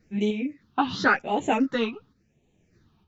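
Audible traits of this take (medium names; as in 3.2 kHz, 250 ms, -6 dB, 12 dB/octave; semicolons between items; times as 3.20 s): phasing stages 6, 0.91 Hz, lowest notch 520–1400 Hz; random-step tremolo 3.3 Hz, depth 55%; a shimmering, thickened sound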